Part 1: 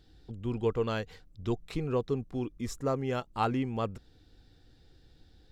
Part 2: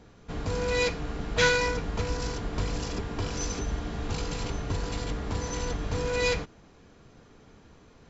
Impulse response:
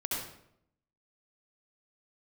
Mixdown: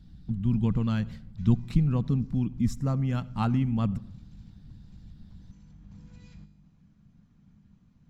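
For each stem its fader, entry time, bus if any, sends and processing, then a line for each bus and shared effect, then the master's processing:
-1.5 dB, 0.00 s, send -21 dB, dry
-8.5 dB, 0.00 s, no send, compressor 3:1, threshold -40 dBFS, peak gain reduction 16.5 dB; resonator 50 Hz, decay 0.9 s, harmonics all, mix 70%; auto duck -8 dB, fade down 0.65 s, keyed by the first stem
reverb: on, RT60 0.75 s, pre-delay 62 ms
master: harmonic-percussive split harmonic -6 dB; resonant low shelf 280 Hz +13 dB, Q 3

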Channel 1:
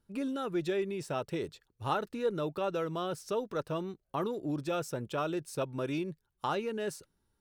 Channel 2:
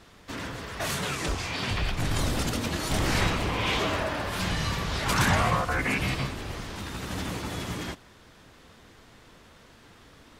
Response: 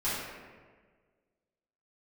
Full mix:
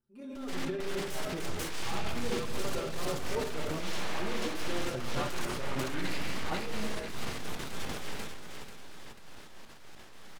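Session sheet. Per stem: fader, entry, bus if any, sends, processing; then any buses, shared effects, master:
-12.5 dB, 0.00 s, send -5.5 dB, no echo send, bell 230 Hz +6 dB 2.4 oct; endless flanger 5.4 ms +0.4 Hz
+2.0 dB, 0.20 s, send -15.5 dB, echo send -5 dB, compressor 6:1, threshold -35 dBFS, peak gain reduction 15 dB; full-wave rectifier; step gate ".xx.x.x.x.xxxx" 100 bpm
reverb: on, RT60 1.6 s, pre-delay 3 ms
echo: feedback echo 0.49 s, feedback 41%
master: transient shaper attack -7 dB, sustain +7 dB

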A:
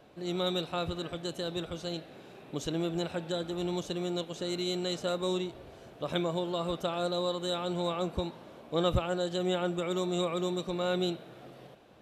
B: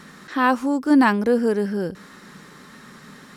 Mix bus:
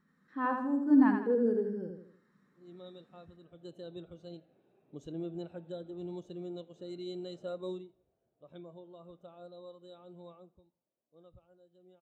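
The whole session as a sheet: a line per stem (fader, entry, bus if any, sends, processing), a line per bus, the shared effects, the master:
3.41 s -9.5 dB -> 3.67 s -2.5 dB -> 7.68 s -2.5 dB -> 7.95 s -9.5 dB -> 10.31 s -9.5 dB -> 10.64 s -19 dB, 2.40 s, no send, echo send -19.5 dB, dry
-10.5 dB, 0.00 s, no send, echo send -4 dB, dry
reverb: off
echo: feedback echo 81 ms, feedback 55%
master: bell 4400 Hz -2.5 dB 1.6 oct; spectral expander 1.5:1

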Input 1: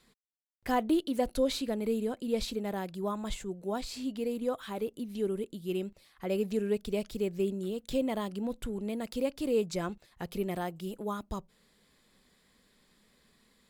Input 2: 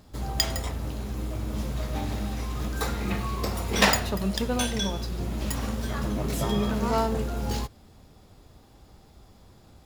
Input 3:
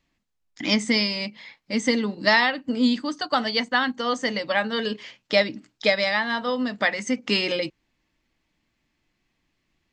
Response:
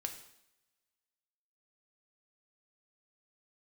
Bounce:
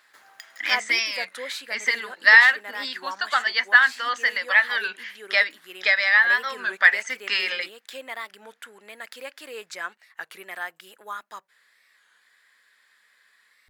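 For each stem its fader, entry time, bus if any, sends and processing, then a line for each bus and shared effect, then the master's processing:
+1.0 dB, 0.00 s, no send, dry
-6.5 dB, 0.00 s, no send, compressor 4:1, threshold -36 dBFS, peak gain reduction 18 dB; auto duck -13 dB, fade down 1.80 s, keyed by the first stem
-3.5 dB, 0.00 s, no send, dry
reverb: off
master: HPF 910 Hz 12 dB/oct; bell 1700 Hz +14.5 dB 0.82 oct; record warp 33 1/3 rpm, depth 160 cents

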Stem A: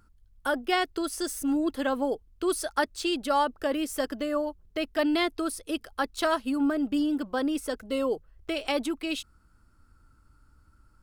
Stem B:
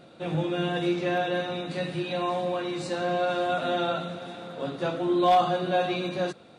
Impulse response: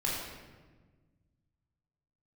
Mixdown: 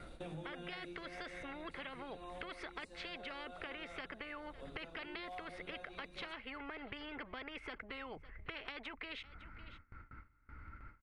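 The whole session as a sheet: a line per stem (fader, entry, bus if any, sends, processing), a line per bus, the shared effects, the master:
-0.5 dB, 0.00 s, no send, echo send -24 dB, ladder low-pass 2200 Hz, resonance 85%; spectral compressor 4:1
-4.5 dB, 0.00 s, no send, no echo send, auto duck -13 dB, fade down 1.20 s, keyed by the first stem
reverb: off
echo: echo 0.555 s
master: gate with hold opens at -42 dBFS; bell 10000 Hz +12.5 dB 0.51 oct; compressor 6:1, threshold -44 dBFS, peak gain reduction 15 dB

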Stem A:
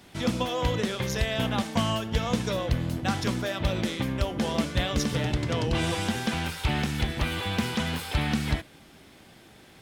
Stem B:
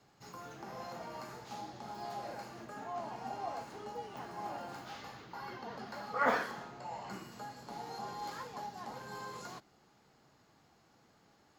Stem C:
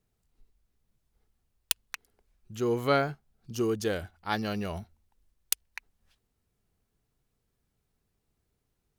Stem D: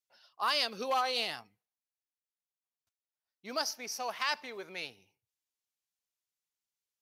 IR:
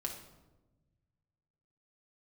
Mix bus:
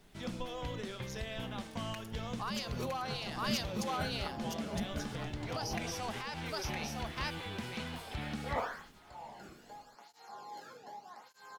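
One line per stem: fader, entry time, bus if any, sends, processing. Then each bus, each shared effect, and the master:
-8.0 dB, 0.00 s, bus A, no send, echo send -23 dB, flange 0.29 Hz, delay 4.3 ms, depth 6.8 ms, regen +74%
-4.0 dB, 2.30 s, no bus, no send, no echo send, tape flanging out of phase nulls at 0.83 Hz, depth 1.1 ms
-2.5 dB, 0.00 s, bus A, send -10.5 dB, echo send -6.5 dB, comb 4.8 ms, depth 91%; negative-ratio compressor -39 dBFS, ratio -0.5
-1.5 dB, 2.00 s, bus A, no send, echo send -6 dB, dry
bus A: 0.0 dB, high shelf 11000 Hz -5 dB; limiter -29.5 dBFS, peak gain reduction 13 dB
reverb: on, RT60 1.1 s, pre-delay 5 ms
echo: echo 0.962 s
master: dry

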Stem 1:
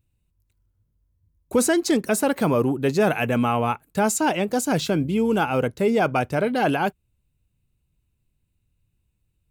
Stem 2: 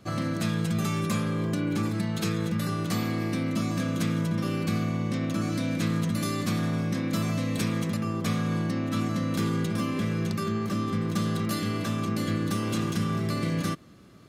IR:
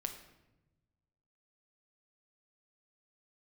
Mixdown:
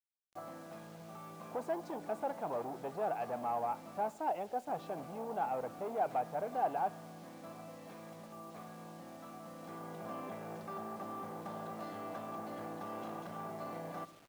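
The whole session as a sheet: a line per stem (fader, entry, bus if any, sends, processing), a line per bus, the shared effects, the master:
-6.5 dB, 0.00 s, send -12 dB, low shelf 110 Hz +11 dB
0.0 dB, 0.30 s, muted 4.1–4.67, send -6.5 dB, auto duck -19 dB, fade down 0.85 s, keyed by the first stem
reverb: on, RT60 1.0 s, pre-delay 6 ms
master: soft clip -22.5 dBFS, distortion -13 dB; band-pass 750 Hz, Q 3.4; requantised 10-bit, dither none

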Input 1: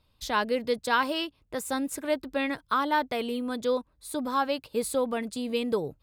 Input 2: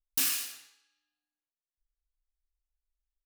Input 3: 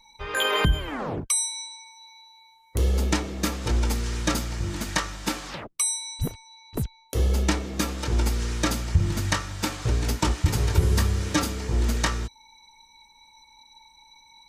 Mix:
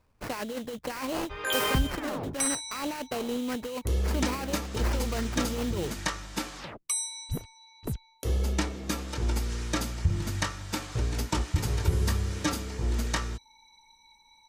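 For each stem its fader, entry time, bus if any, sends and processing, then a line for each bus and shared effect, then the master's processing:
-2.5 dB, 0.00 s, no send, sample-rate reducer 3500 Hz, jitter 20%; negative-ratio compressor -30 dBFS, ratio -1
-7.0 dB, 1.35 s, no send, dry
-5.0 dB, 1.10 s, no send, dry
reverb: off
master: dry

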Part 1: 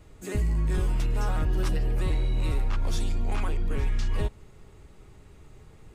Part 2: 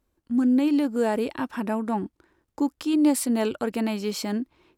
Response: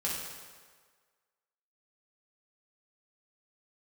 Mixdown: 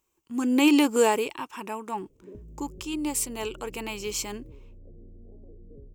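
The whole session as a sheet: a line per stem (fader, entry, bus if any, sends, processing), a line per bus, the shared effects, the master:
-4.0 dB, 2.00 s, no send, steep low-pass 550 Hz 48 dB/oct; compressor 2.5:1, threshold -33 dBFS, peak gain reduction 8.5 dB
0.96 s -2.5 dB -> 1.38 s -15 dB, 0.00 s, no send, ripple EQ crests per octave 0.72, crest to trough 9 dB; AGC gain up to 11.5 dB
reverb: off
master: tilt +2.5 dB/oct

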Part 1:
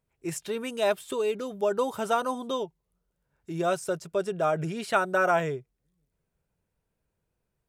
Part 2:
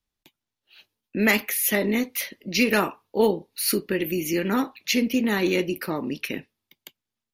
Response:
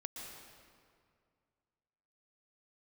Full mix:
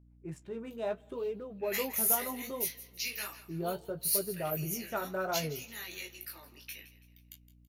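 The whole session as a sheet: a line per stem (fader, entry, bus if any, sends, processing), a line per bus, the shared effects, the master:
-8.5 dB, 0.00 s, send -20.5 dB, no echo send, Wiener smoothing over 9 samples; tilt -2.5 dB/oct
+1.0 dB, 0.45 s, no send, echo send -16 dB, differentiator; chorus 1.4 Hz, delay 19 ms, depth 3.4 ms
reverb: on, RT60 2.2 s, pre-delay 0.111 s
echo: feedback echo 0.165 s, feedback 39%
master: flange 0.7 Hz, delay 9.4 ms, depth 9.3 ms, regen -33%; hum 60 Hz, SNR 23 dB

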